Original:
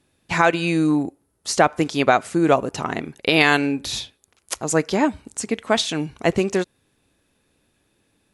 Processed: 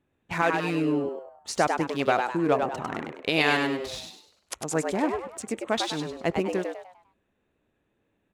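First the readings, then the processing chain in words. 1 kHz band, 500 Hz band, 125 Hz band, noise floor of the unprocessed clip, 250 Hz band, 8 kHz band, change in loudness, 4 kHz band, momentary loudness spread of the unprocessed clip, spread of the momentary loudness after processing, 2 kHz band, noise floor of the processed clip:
-5.5 dB, -5.5 dB, -7.5 dB, -68 dBFS, -7.0 dB, -9.0 dB, -6.5 dB, -7.0 dB, 12 LU, 12 LU, -6.5 dB, -75 dBFS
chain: Wiener smoothing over 9 samples; frequency-shifting echo 0.1 s, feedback 37%, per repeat +120 Hz, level -5 dB; gain -7.5 dB

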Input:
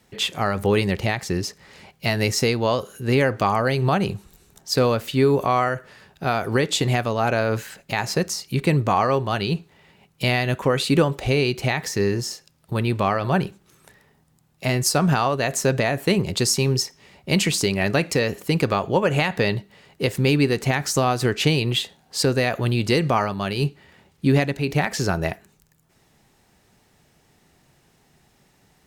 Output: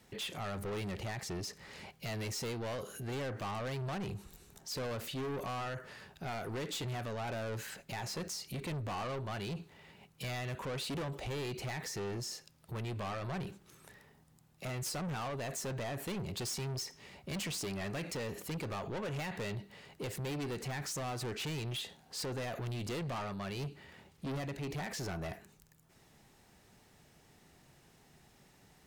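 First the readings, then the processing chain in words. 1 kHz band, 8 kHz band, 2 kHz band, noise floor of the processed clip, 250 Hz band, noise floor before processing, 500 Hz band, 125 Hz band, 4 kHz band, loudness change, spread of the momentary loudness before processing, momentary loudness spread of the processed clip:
-18.0 dB, -14.5 dB, -18.0 dB, -65 dBFS, -18.5 dB, -61 dBFS, -18.5 dB, -16.5 dB, -16.0 dB, -17.5 dB, 8 LU, 8 LU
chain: soft clip -26 dBFS, distortion -6 dB; limiter -32.5 dBFS, peak gain reduction 6.5 dB; gain -3.5 dB

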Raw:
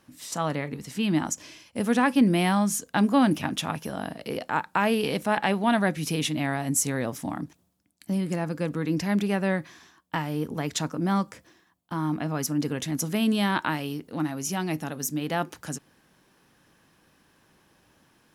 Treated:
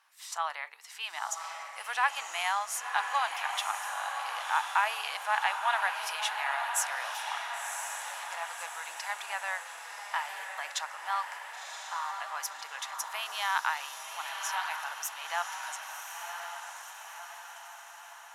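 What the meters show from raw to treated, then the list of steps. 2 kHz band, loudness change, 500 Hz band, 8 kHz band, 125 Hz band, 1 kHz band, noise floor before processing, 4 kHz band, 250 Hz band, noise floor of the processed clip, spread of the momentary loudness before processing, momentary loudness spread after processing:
0.0 dB, -6.5 dB, -15.5 dB, -4.0 dB, under -40 dB, -0.5 dB, -65 dBFS, -1.5 dB, under -40 dB, -49 dBFS, 12 LU, 12 LU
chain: steep high-pass 820 Hz 36 dB/oct; high shelf 3600 Hz -7 dB; on a send: diffused feedback echo 1.052 s, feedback 57%, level -5 dB

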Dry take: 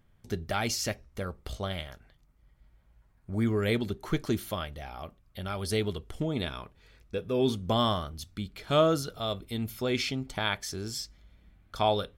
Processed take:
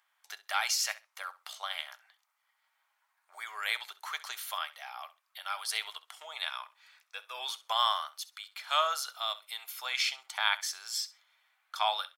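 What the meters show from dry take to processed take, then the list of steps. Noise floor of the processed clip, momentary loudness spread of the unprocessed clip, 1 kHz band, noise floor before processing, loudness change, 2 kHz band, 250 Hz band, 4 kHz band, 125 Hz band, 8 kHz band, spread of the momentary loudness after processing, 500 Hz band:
-78 dBFS, 13 LU, +0.5 dB, -64 dBFS, -2.5 dB, +2.5 dB, under -40 dB, +2.5 dB, under -40 dB, +2.5 dB, 16 LU, -15.0 dB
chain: steep high-pass 830 Hz 36 dB/oct; on a send: feedback echo 66 ms, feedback 17%, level -17.5 dB; on the sum: gain +2.5 dB

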